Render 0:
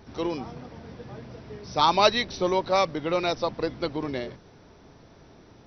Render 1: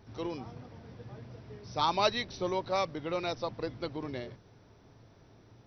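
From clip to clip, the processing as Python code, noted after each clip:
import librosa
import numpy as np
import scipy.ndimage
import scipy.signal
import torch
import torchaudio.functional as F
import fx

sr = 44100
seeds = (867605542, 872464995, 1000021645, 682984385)

y = fx.peak_eq(x, sr, hz=110.0, db=12.5, octaves=0.27)
y = F.gain(torch.from_numpy(y), -8.0).numpy()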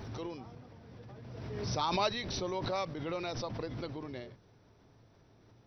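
y = fx.pre_swell(x, sr, db_per_s=29.0)
y = F.gain(torch.from_numpy(y), -5.0).numpy()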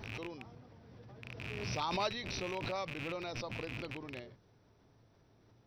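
y = fx.rattle_buzz(x, sr, strikes_db=-42.0, level_db=-27.0)
y = F.gain(torch.from_numpy(y), -4.0).numpy()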